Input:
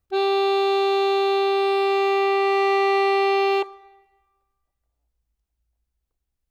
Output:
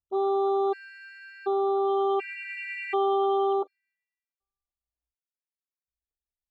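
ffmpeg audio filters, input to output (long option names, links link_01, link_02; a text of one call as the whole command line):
ffmpeg -i in.wav -af "afwtdn=0.0447,afftfilt=real='re*gt(sin(2*PI*0.68*pts/sr)*(1-2*mod(floor(b*sr/1024/1400),2)),0)':imag='im*gt(sin(2*PI*0.68*pts/sr)*(1-2*mod(floor(b*sr/1024/1400),2)),0)':win_size=1024:overlap=0.75,volume=-4dB" out.wav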